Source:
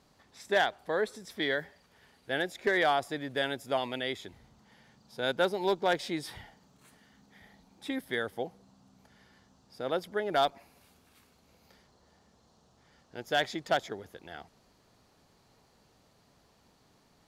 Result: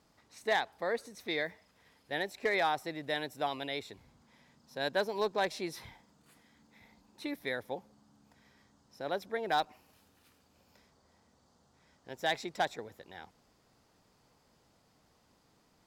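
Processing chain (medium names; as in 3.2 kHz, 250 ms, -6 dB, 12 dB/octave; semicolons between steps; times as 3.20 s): speed mistake 44.1 kHz file played as 48 kHz; trim -3.5 dB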